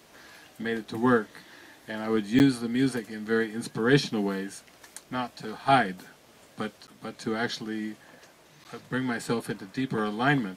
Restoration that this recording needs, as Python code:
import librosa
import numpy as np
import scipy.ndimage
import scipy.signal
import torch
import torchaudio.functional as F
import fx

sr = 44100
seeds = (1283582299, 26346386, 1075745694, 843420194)

y = fx.fix_interpolate(x, sr, at_s=(2.39, 6.87, 8.64), length_ms=9.8)